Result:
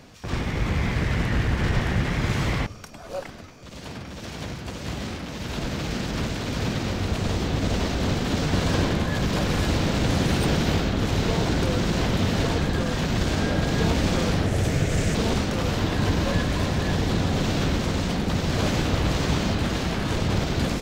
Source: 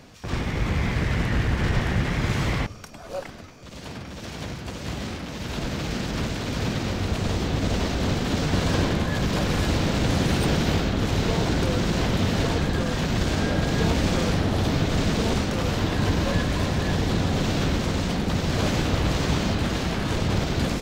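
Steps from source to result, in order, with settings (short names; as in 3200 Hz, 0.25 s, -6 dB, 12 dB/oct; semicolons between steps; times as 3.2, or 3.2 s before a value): 14.46–15.15 graphic EQ 125/250/500/1000/2000/4000/8000 Hz +3/-5/+3/-7/+4/-7/+8 dB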